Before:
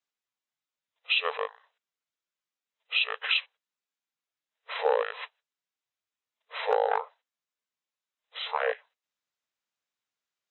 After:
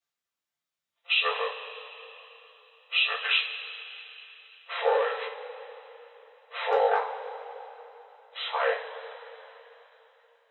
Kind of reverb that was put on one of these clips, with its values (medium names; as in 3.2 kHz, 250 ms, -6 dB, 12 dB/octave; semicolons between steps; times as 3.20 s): two-slope reverb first 0.29 s, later 3.6 s, from -18 dB, DRR -5 dB; trim -3.5 dB